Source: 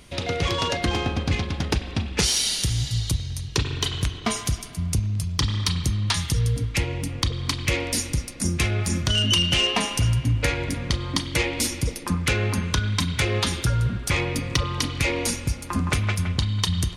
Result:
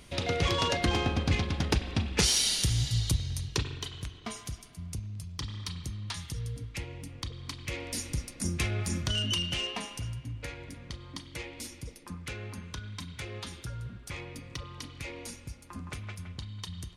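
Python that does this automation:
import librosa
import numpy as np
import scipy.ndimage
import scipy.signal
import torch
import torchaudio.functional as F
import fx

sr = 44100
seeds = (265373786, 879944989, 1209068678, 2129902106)

y = fx.gain(x, sr, db=fx.line((3.43, -3.5), (3.89, -14.0), (7.64, -14.0), (8.19, -7.5), (9.02, -7.5), (10.23, -17.0)))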